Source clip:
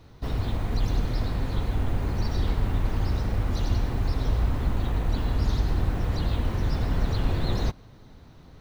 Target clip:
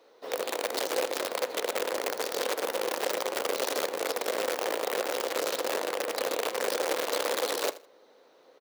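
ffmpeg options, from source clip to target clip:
-af "aeval=exprs='(mod(10.6*val(0)+1,2)-1)/10.6':c=same,highpass=f=370:w=0.5412,highpass=f=370:w=1.3066,equalizer=f=510:t=o:w=0.42:g=11.5,aecho=1:1:80|160:0.133|0.028,volume=-4dB"

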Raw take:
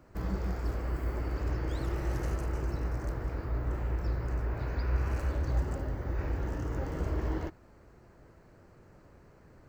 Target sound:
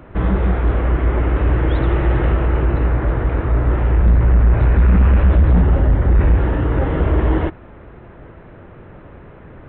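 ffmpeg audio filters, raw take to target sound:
-filter_complex "[0:a]asettb=1/sr,asplit=3[a][b][c];[a]atrim=end=3.974[d];[b]atrim=start=3.97:end=6.38,asetpts=PTS-STARTPTS,afade=t=in:d=0.004:c=qsin,afade=t=out:st=2.406:d=0.004:c=qsin,lowshelf=f=110:g=8[e];[c]atrim=start=6.376[f];[d][e]acrossfade=d=0.004:c1=hsin:c2=qsin[g];[g][f]acrossfade=d=0.004:c1=qsin:c2=hsin,aeval=exprs='0.224*sin(PI/2*2.51*val(0)/0.224)':c=same,aresample=8000,aresample=44100,volume=5.5dB"

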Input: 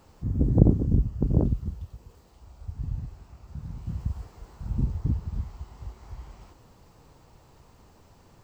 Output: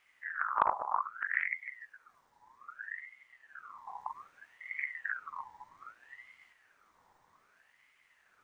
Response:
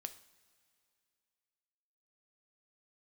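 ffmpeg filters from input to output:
-af "aeval=exprs='0.841*(cos(1*acos(clip(val(0)/0.841,-1,1)))-cos(1*PI/2))+0.0668*(cos(3*acos(clip(val(0)/0.841,-1,1)))-cos(3*PI/2))+0.075*(cos(8*acos(clip(val(0)/0.841,-1,1)))-cos(8*PI/2))':c=same,aeval=exprs='val(0)*sin(2*PI*1500*n/s+1500*0.4/0.63*sin(2*PI*0.63*n/s))':c=same,volume=-8dB"

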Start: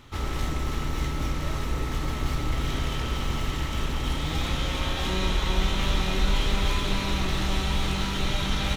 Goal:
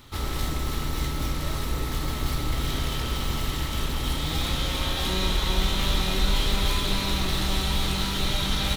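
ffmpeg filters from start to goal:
-af "aexciter=amount=2.3:drive=2.3:freq=3.6k"

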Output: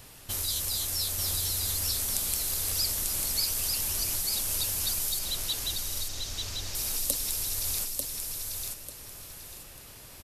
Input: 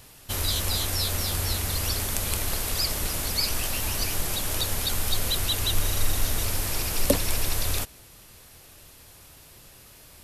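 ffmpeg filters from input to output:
-filter_complex "[0:a]asettb=1/sr,asplit=3[a][b][c];[a]atrim=end=5.194[d];[b]atrim=start=5.19:end=6.75,asetpts=PTS-STARTPTS,afade=t=in:d=0.004:c=qsin,afade=t=out:st=1.556:d=0.004:c=qsin,lowpass=f=6.3k:w=0.5412,lowpass=f=6.3k:w=1.3066[e];[c]atrim=start=6.746[f];[d][e]acrossfade=d=0.004:c1=hsin:c2=qsin[g];[g][f]acrossfade=d=0.004:c1=qsin:c2=hsin,acrossover=split=4400[h][i];[h]acompressor=threshold=-38dB:ratio=6[j];[j][i]amix=inputs=2:normalize=0,aecho=1:1:893|1786|2679|3572:0.631|0.177|0.0495|0.0139"

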